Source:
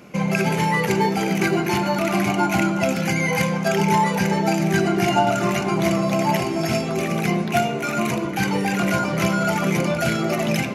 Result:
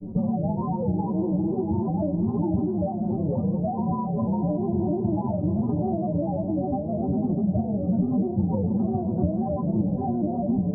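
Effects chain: steep low-pass 920 Hz 48 dB/oct; upward compressor, threshold -35 dBFS; low shelf 320 Hz +9.5 dB; metallic resonator 100 Hz, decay 0.38 s, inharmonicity 0.03; grains, spray 29 ms, pitch spread up and down by 3 st; compressor, threshold -33 dBFS, peak gain reduction 12 dB; tilt -4 dB/oct; diffused feedback echo 0.506 s, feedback 48%, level -15 dB; gain +3.5 dB

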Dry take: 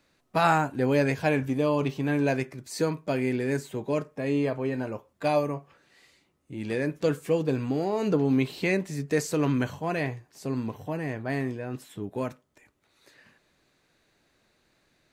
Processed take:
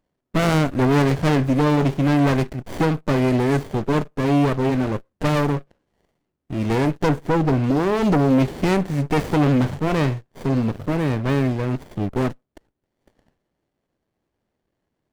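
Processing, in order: sample leveller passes 3; 7.09–7.64 high shelf 2500 Hz -7.5 dB; running maximum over 33 samples

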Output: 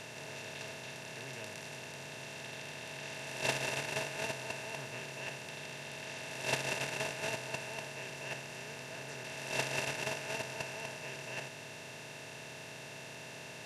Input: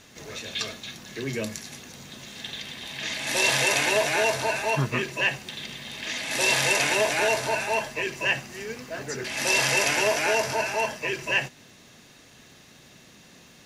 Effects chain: per-bin compression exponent 0.2; gate -10 dBFS, range -37 dB; gain +10.5 dB

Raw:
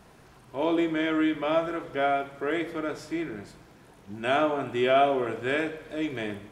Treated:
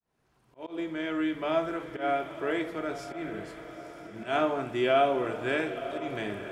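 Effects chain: opening faded in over 1.64 s; auto swell 0.128 s; diffused feedback echo 0.92 s, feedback 54%, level -12 dB; gain -2 dB

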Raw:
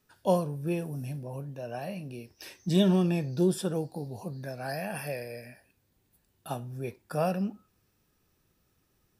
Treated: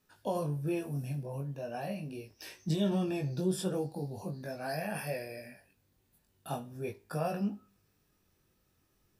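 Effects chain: Schroeder reverb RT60 0.38 s, combs from 27 ms, DRR 18.5 dB; limiter -21.5 dBFS, peak gain reduction 9 dB; chorus 0.41 Hz, delay 19 ms, depth 2.5 ms; gain +1.5 dB

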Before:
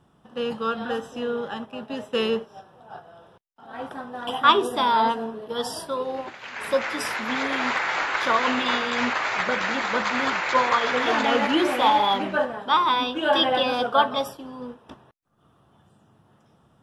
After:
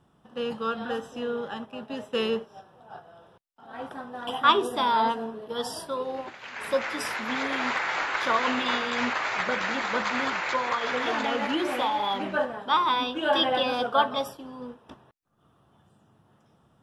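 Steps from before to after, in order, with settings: 10.21–12.36 compressor, threshold -20 dBFS, peak gain reduction 6.5 dB; gain -3 dB

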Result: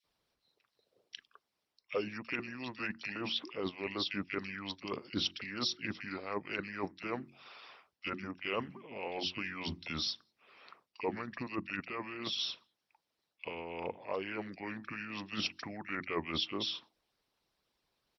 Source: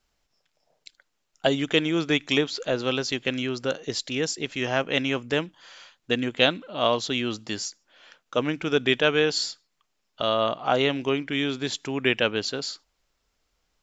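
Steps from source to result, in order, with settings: HPF 80 Hz; notches 60/120/180/240/300/360/420/480 Hz; varispeed -24%; reverse; compressor 6:1, threshold -28 dBFS, peak gain reduction 14.5 dB; reverse; bands offset in time highs, lows 40 ms, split 1900 Hz; harmonic-percussive split harmonic -15 dB

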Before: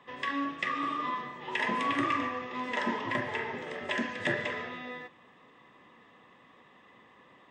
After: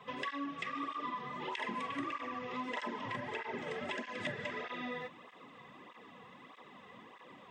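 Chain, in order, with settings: notch 1800 Hz, Q 10; compressor 6:1, threshold -41 dBFS, peak gain reduction 14.5 dB; tape flanging out of phase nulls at 1.6 Hz, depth 3.6 ms; gain +6.5 dB

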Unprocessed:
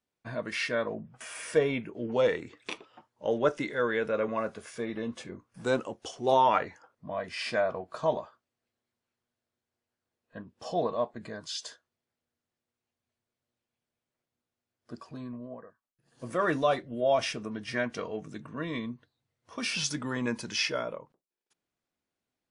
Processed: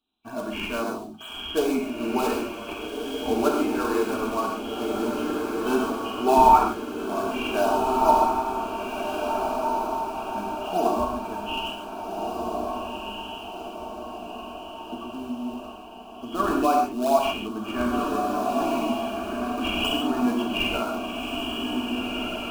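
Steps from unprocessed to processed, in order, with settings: nonlinear frequency compression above 2300 Hz 4:1; bell 89 Hz -5 dB 1.9 oct; notch 1000 Hz, Q 16; in parallel at -10.5 dB: decimation with a swept rate 37×, swing 160% 2.2 Hz; on the sum: fixed phaser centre 520 Hz, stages 6; on a send: diffused feedback echo 1.618 s, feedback 54%, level -3.5 dB; on the sum: non-linear reverb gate 0.17 s flat, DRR 0.5 dB; gain +5.5 dB

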